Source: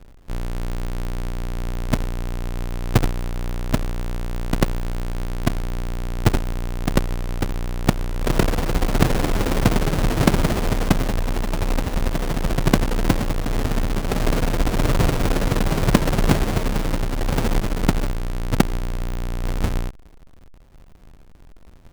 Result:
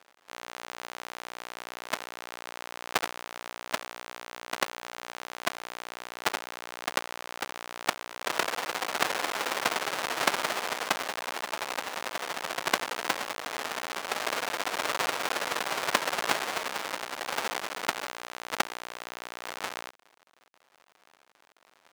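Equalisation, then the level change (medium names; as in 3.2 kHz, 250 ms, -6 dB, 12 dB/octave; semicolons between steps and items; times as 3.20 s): high-pass 880 Hz 12 dB/octave; treble shelf 8.9 kHz -6.5 dB; 0.0 dB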